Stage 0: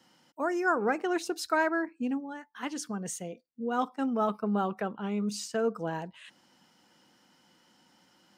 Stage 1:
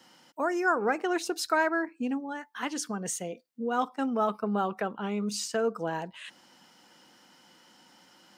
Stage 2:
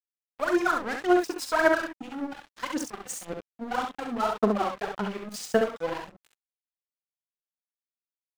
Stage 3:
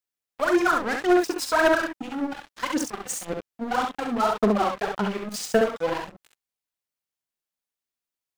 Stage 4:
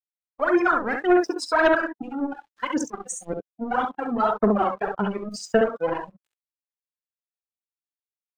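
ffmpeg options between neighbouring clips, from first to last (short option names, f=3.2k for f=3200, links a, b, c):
-filter_complex "[0:a]lowshelf=f=210:g=-8,asplit=2[a][b];[b]acompressor=threshold=-39dB:ratio=6,volume=1dB[c];[a][c]amix=inputs=2:normalize=0"
-af "aphaser=in_gain=1:out_gain=1:delay=4:decay=0.75:speed=1.8:type=sinusoidal,aeval=exprs='sgn(val(0))*max(abs(val(0))-0.0251,0)':c=same,aecho=1:1:42|67:0.299|0.562,volume=-1.5dB"
-af "asoftclip=type=tanh:threshold=-17.5dB,volume=5.5dB"
-af "afftdn=nr=23:nf=-33,volume=1dB"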